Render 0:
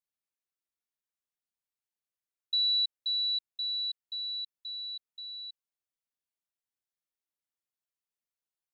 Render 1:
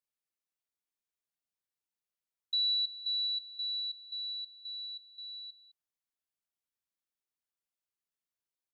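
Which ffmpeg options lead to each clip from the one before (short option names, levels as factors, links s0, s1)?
-af "aecho=1:1:209:0.158,volume=0.75"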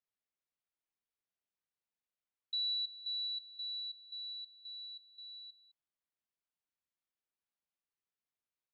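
-af "lowpass=3700,volume=0.794"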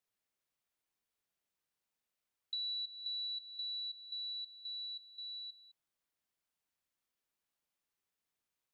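-af "acompressor=threshold=0.00501:ratio=3,volume=1.78"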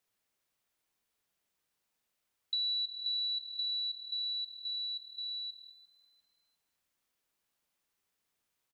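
-filter_complex "[0:a]asplit=4[s0][s1][s2][s3];[s1]adelay=349,afreqshift=39,volume=0.106[s4];[s2]adelay=698,afreqshift=78,volume=0.0327[s5];[s3]adelay=1047,afreqshift=117,volume=0.0102[s6];[s0][s4][s5][s6]amix=inputs=4:normalize=0,volume=2"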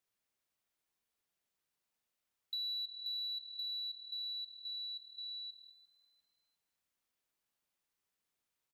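-af "asoftclip=type=tanh:threshold=0.0473,volume=0.562"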